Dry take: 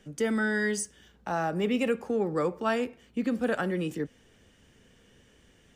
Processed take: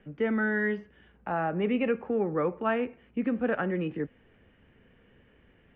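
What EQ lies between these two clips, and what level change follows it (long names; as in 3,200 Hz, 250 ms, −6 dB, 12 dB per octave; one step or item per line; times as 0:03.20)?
Butterworth low-pass 2,700 Hz 36 dB per octave
0.0 dB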